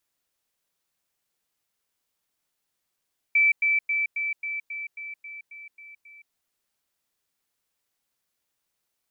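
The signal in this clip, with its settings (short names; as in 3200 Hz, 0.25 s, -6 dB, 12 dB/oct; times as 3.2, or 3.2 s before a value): level ladder 2320 Hz -16 dBFS, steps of -3 dB, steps 11, 0.17 s 0.10 s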